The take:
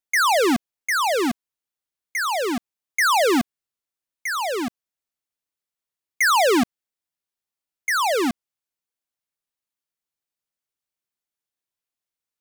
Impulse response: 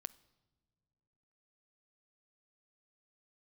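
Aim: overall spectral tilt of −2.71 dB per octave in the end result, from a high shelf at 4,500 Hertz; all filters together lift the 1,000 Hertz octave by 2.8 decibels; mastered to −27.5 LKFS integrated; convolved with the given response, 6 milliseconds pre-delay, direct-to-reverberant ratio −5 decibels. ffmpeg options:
-filter_complex "[0:a]equalizer=frequency=1000:width_type=o:gain=4,highshelf=frequency=4500:gain=-7,asplit=2[link_01][link_02];[1:a]atrim=start_sample=2205,adelay=6[link_03];[link_02][link_03]afir=irnorm=-1:irlink=0,volume=9dB[link_04];[link_01][link_04]amix=inputs=2:normalize=0,volume=-13dB"

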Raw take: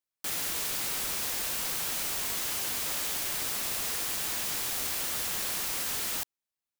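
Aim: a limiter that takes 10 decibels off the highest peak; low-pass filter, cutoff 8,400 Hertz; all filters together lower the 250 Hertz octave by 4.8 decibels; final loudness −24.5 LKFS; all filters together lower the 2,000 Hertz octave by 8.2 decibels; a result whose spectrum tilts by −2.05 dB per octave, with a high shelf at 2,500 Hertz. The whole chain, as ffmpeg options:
ffmpeg -i in.wav -af "lowpass=8400,equalizer=frequency=250:width_type=o:gain=-6.5,equalizer=frequency=2000:width_type=o:gain=-7.5,highshelf=frequency=2500:gain=-6,volume=21.5dB,alimiter=limit=-17dB:level=0:latency=1" out.wav

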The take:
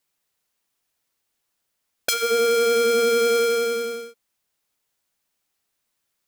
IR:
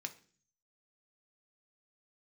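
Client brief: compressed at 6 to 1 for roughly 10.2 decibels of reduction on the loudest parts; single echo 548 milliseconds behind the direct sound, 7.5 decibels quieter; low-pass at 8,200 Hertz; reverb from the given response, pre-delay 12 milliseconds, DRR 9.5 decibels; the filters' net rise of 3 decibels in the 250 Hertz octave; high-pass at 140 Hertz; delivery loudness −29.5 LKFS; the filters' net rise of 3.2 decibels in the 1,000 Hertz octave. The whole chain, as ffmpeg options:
-filter_complex "[0:a]highpass=140,lowpass=8200,equalizer=frequency=250:width_type=o:gain=3.5,equalizer=frequency=1000:width_type=o:gain=6,acompressor=threshold=-25dB:ratio=6,aecho=1:1:548:0.422,asplit=2[link_01][link_02];[1:a]atrim=start_sample=2205,adelay=12[link_03];[link_02][link_03]afir=irnorm=-1:irlink=0,volume=-8dB[link_04];[link_01][link_04]amix=inputs=2:normalize=0,volume=1dB"

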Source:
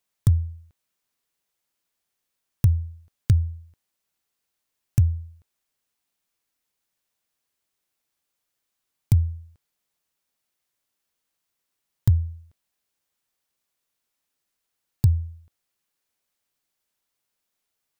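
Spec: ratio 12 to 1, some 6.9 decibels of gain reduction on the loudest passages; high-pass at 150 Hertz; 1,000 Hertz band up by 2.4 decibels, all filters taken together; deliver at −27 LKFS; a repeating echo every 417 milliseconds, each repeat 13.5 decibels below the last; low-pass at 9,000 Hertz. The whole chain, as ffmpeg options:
ffmpeg -i in.wav -af "highpass=150,lowpass=9000,equalizer=frequency=1000:width_type=o:gain=3,acompressor=threshold=-26dB:ratio=12,aecho=1:1:417|834:0.211|0.0444,volume=12.5dB" out.wav

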